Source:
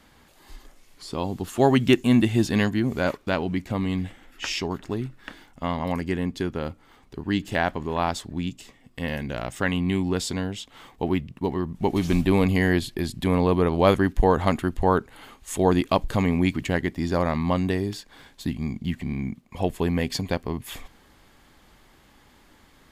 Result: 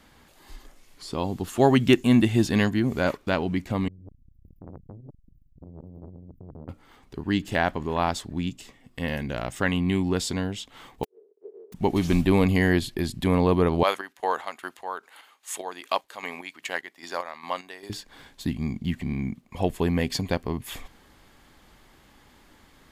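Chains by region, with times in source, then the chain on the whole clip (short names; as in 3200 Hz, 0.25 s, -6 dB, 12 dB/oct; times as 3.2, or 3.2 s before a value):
3.88–6.69 inverse Chebyshev band-stop 640–7700 Hz, stop band 70 dB + negative-ratio compressor -37 dBFS, ratio -0.5 + core saturation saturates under 560 Hz
11.03–11.72 spectral contrast lowered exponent 0.12 + Butterworth band-pass 420 Hz, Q 5.7 + flipped gate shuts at -20 dBFS, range -33 dB
13.83–17.9 HPF 790 Hz + chopper 2.5 Hz, depth 60%, duty 45%
whole clip: dry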